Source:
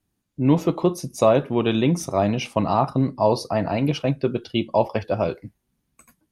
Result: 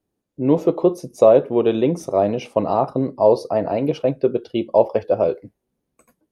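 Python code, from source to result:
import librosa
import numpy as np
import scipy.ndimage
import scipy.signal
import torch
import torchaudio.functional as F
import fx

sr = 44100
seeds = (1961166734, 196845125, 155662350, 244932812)

y = fx.peak_eq(x, sr, hz=480.0, db=15.0, octaves=1.5)
y = F.gain(torch.from_numpy(y), -7.0).numpy()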